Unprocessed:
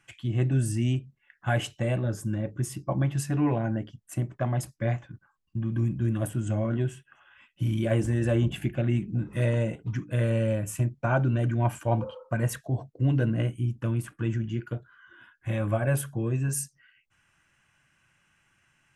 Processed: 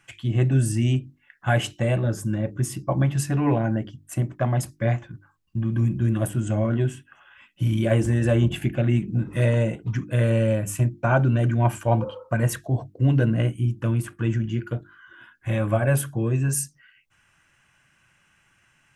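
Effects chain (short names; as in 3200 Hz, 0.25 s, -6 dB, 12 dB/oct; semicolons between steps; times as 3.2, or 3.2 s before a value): notches 50/100/150/200/250/300/350 Hz; short-mantissa float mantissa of 8-bit; gain +5 dB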